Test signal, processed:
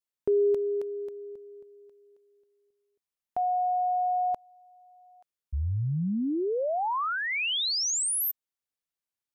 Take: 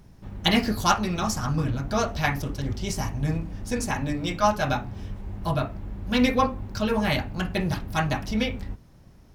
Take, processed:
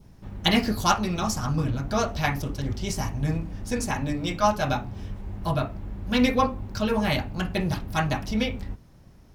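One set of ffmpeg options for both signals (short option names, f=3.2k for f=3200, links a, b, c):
-af "adynamicequalizer=threshold=0.00631:dfrequency=1700:dqfactor=2.2:tfrequency=1700:tqfactor=2.2:attack=5:release=100:ratio=0.375:range=2:mode=cutabove:tftype=bell"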